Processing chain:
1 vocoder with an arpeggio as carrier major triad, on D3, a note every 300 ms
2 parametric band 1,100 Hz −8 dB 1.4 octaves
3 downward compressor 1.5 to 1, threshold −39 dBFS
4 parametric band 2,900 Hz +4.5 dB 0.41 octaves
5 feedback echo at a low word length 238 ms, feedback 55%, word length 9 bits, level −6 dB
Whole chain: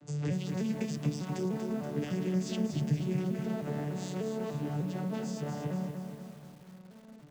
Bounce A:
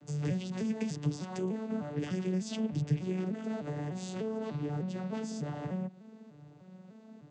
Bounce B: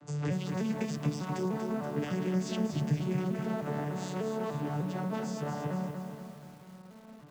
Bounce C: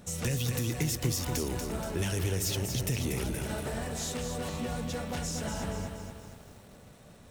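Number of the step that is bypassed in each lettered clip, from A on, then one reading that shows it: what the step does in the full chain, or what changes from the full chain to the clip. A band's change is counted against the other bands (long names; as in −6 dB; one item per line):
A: 5, change in momentary loudness spread +4 LU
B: 2, 1 kHz band +5.0 dB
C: 1, 8 kHz band +12.0 dB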